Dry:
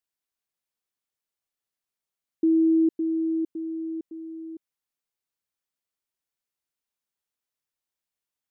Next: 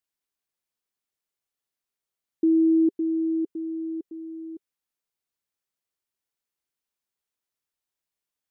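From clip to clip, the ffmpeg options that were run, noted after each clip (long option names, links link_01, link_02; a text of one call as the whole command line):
ffmpeg -i in.wav -af "equalizer=frequency=390:width=4.6:gain=2.5" out.wav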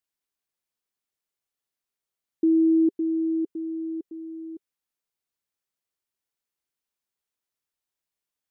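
ffmpeg -i in.wav -af anull out.wav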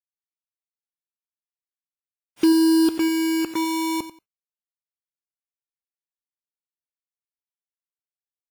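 ffmpeg -i in.wav -af "acrusher=bits=4:mix=0:aa=0.000001,aecho=1:1:91|182:0.224|0.0381,volume=5dB" -ar 44100 -c:a wmav2 -b:a 32k out.wma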